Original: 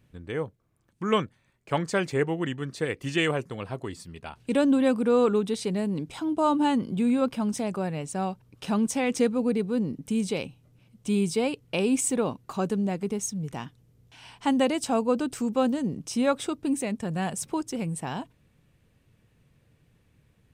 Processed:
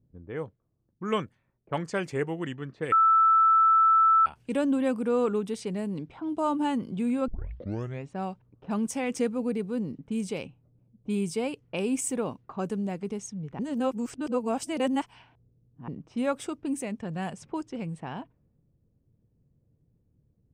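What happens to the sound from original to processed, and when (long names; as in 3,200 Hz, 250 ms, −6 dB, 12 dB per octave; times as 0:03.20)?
0:02.92–0:04.26: beep over 1,320 Hz −12.5 dBFS
0:07.28: tape start 0.80 s
0:13.59–0:15.88: reverse
whole clip: low-pass that shuts in the quiet parts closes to 410 Hz, open at −23.5 dBFS; dynamic equaliser 3,900 Hz, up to −7 dB, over −57 dBFS, Q 3.9; level −4 dB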